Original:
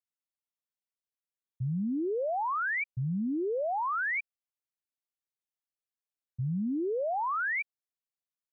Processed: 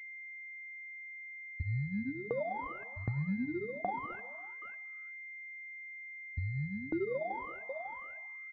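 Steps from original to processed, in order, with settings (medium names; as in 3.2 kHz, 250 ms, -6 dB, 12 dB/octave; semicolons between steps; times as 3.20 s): local Wiener filter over 15 samples; chorus voices 4, 0.41 Hz, delay 12 ms, depth 2.1 ms; pitch shift -6 st; delay 548 ms -20 dB; tremolo saw down 1.3 Hz, depth 100%; compression 3:1, threshold -54 dBFS, peak gain reduction 17 dB; on a send at -17.5 dB: reverberation, pre-delay 3 ms; on the sum: class-D stage that switches slowly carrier 2.1 kHz; trim +16 dB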